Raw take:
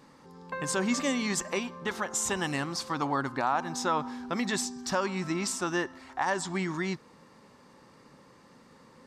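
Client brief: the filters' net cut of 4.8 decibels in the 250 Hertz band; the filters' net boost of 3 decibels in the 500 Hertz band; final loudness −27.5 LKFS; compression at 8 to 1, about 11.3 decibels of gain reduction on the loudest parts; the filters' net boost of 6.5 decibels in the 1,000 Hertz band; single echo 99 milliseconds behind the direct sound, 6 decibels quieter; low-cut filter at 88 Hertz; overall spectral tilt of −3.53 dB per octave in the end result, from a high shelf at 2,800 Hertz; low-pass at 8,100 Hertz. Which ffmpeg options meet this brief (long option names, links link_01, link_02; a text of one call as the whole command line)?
ffmpeg -i in.wav -af "highpass=88,lowpass=8100,equalizer=frequency=250:width_type=o:gain=-8.5,equalizer=frequency=500:width_type=o:gain=4.5,equalizer=frequency=1000:width_type=o:gain=8,highshelf=frequency=2800:gain=-6,acompressor=threshold=-29dB:ratio=8,aecho=1:1:99:0.501,volume=6.5dB" out.wav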